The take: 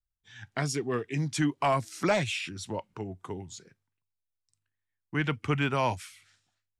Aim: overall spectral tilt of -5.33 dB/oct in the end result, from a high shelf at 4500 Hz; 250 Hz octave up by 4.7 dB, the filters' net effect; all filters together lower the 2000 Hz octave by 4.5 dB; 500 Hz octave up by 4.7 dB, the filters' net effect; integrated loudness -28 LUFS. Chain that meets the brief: bell 250 Hz +4.5 dB; bell 500 Hz +5.5 dB; bell 2000 Hz -8 dB; high shelf 4500 Hz +7.5 dB

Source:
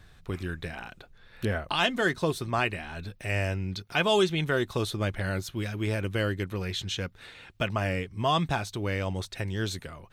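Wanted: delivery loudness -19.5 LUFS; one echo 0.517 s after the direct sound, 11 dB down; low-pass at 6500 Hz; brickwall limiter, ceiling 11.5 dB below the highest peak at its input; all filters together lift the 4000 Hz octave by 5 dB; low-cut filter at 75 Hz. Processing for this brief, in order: HPF 75 Hz; LPF 6500 Hz; bell 4000 Hz +7 dB; limiter -21 dBFS; echo 0.517 s -11 dB; gain +13.5 dB

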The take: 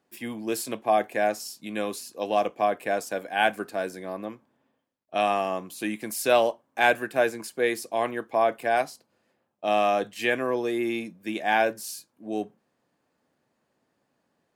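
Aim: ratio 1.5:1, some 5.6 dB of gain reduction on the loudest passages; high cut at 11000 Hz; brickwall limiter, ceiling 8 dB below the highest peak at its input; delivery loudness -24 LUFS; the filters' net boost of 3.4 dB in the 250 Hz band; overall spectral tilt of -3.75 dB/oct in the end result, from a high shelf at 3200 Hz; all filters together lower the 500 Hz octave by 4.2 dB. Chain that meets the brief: LPF 11000 Hz; bell 250 Hz +7.5 dB; bell 500 Hz -8 dB; high shelf 3200 Hz +8 dB; compressor 1.5:1, threshold -32 dBFS; gain +8.5 dB; limiter -11.5 dBFS

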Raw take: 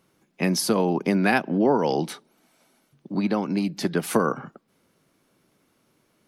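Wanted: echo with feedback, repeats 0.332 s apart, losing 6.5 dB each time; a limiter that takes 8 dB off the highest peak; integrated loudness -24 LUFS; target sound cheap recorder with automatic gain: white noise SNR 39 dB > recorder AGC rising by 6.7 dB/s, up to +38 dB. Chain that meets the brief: limiter -14 dBFS; feedback echo 0.332 s, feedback 47%, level -6.5 dB; white noise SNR 39 dB; recorder AGC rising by 6.7 dB/s, up to +38 dB; gain +1.5 dB

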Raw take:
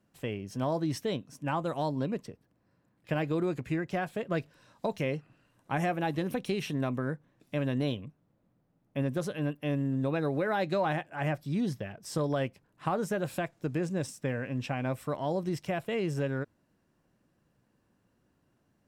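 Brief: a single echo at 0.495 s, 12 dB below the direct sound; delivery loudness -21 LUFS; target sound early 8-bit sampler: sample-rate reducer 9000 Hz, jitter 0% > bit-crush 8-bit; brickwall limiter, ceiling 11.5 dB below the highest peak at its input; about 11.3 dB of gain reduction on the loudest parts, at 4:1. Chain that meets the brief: compressor 4:1, threshold -40 dBFS; limiter -36.5 dBFS; echo 0.495 s -12 dB; sample-rate reducer 9000 Hz, jitter 0%; bit-crush 8-bit; gain +24 dB

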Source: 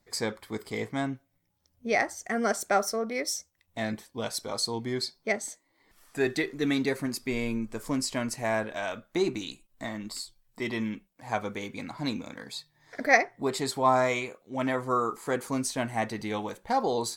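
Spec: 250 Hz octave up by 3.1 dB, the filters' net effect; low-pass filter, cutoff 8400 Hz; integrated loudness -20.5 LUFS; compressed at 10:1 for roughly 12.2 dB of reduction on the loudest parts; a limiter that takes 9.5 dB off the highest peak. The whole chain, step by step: LPF 8400 Hz; bell 250 Hz +3.5 dB; compressor 10:1, threshold -26 dBFS; gain +16 dB; limiter -10 dBFS

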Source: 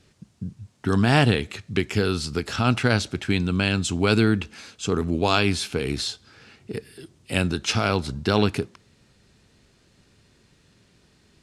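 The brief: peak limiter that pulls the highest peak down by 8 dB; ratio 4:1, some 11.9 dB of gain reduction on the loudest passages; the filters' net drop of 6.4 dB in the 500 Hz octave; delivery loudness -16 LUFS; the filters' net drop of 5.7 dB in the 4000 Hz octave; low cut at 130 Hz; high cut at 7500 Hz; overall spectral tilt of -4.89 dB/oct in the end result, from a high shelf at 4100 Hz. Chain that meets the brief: HPF 130 Hz; LPF 7500 Hz; bell 500 Hz -8.5 dB; bell 4000 Hz -5 dB; high shelf 4100 Hz -3.5 dB; compressor 4:1, threshold -32 dBFS; gain +21.5 dB; limiter -2.5 dBFS

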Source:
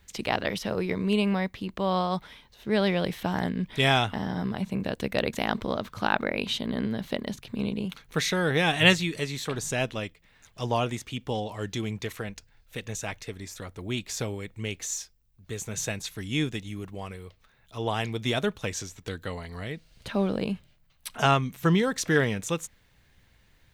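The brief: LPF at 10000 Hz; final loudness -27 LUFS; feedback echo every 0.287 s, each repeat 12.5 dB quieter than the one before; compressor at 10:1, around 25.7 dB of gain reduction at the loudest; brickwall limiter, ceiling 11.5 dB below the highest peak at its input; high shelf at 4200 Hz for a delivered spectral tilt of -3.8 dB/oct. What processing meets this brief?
LPF 10000 Hz; high shelf 4200 Hz +9 dB; compressor 10:1, threshold -39 dBFS; limiter -33 dBFS; feedback echo 0.287 s, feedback 24%, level -12.5 dB; gain +17.5 dB

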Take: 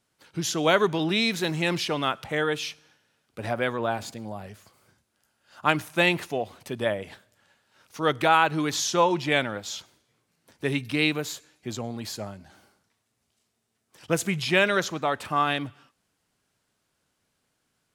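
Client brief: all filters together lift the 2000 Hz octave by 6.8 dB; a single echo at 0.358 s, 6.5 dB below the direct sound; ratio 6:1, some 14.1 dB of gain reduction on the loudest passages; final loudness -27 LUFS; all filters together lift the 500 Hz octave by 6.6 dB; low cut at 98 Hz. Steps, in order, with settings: HPF 98 Hz; bell 500 Hz +7.5 dB; bell 2000 Hz +8.5 dB; compressor 6:1, threshold -26 dBFS; echo 0.358 s -6.5 dB; gain +3.5 dB

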